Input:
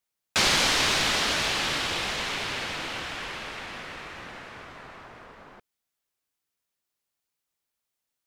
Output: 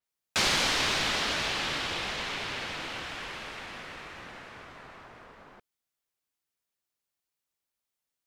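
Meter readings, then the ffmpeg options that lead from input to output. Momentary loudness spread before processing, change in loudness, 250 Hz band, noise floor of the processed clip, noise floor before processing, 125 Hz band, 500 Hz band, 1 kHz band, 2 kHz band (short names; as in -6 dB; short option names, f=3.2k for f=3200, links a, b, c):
21 LU, -4.0 dB, -3.5 dB, under -85 dBFS, -84 dBFS, -3.5 dB, -3.5 dB, -3.5 dB, -3.5 dB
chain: -af "adynamicequalizer=threshold=0.0112:dfrequency=6100:dqfactor=0.7:tfrequency=6100:tqfactor=0.7:attack=5:release=100:ratio=0.375:range=3:mode=cutabove:tftype=highshelf,volume=-3.5dB"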